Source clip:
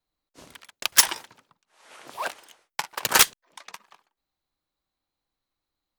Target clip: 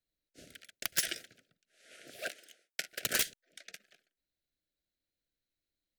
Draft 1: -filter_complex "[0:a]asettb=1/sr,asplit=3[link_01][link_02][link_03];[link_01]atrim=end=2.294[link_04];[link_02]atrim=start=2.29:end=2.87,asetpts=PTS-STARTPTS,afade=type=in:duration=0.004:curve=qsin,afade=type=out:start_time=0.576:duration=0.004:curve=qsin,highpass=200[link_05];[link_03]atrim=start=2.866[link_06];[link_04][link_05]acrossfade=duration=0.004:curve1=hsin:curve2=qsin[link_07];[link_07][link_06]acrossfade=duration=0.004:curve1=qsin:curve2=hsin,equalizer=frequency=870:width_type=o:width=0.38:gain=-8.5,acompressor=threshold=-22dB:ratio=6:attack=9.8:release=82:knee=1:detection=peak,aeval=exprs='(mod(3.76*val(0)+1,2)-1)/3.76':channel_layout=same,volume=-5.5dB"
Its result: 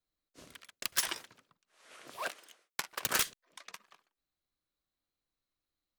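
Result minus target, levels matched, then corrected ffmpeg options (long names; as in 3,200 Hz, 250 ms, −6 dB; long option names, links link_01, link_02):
1,000 Hz band +9.0 dB
-filter_complex "[0:a]asettb=1/sr,asplit=3[link_01][link_02][link_03];[link_01]atrim=end=2.294[link_04];[link_02]atrim=start=2.29:end=2.87,asetpts=PTS-STARTPTS,afade=type=in:duration=0.004:curve=qsin,afade=type=out:start_time=0.576:duration=0.004:curve=qsin,highpass=200[link_05];[link_03]atrim=start=2.866[link_06];[link_04][link_05]acrossfade=duration=0.004:curve1=hsin:curve2=qsin[link_07];[link_07][link_06]acrossfade=duration=0.004:curve1=qsin:curve2=hsin,equalizer=frequency=870:width_type=o:width=0.38:gain=-8.5,acompressor=threshold=-22dB:ratio=6:attack=9.8:release=82:knee=1:detection=peak,asuperstop=centerf=1000:order=8:qfactor=1.4,aeval=exprs='(mod(3.76*val(0)+1,2)-1)/3.76':channel_layout=same,volume=-5.5dB"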